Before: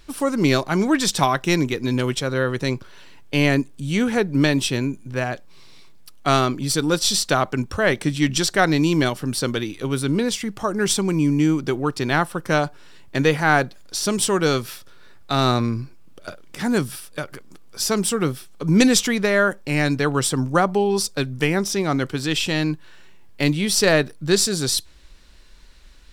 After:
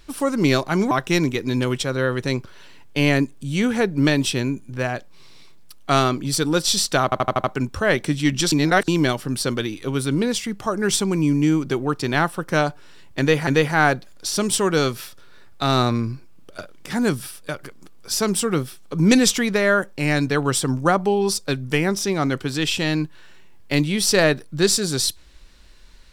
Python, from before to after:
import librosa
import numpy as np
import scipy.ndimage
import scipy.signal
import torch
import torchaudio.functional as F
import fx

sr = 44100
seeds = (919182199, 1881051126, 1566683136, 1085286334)

y = fx.edit(x, sr, fx.cut(start_s=0.91, length_s=0.37),
    fx.stutter(start_s=7.41, slice_s=0.08, count=6),
    fx.reverse_span(start_s=8.49, length_s=0.36),
    fx.repeat(start_s=13.16, length_s=0.28, count=2), tone=tone)